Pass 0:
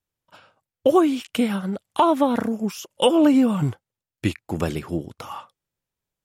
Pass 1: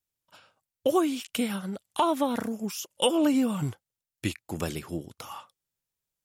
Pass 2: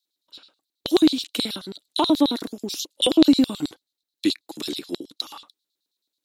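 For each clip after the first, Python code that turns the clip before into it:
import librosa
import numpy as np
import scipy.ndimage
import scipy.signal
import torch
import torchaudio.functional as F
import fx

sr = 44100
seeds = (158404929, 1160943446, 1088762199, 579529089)

y1 = fx.high_shelf(x, sr, hz=3400.0, db=10.5)
y1 = F.gain(torch.from_numpy(y1), -7.5).numpy()
y2 = fx.filter_lfo_highpass(y1, sr, shape='square', hz=9.3, low_hz=300.0, high_hz=4100.0, q=4.4)
y2 = fx.peak_eq(y2, sr, hz=3900.0, db=12.0, octaves=0.37)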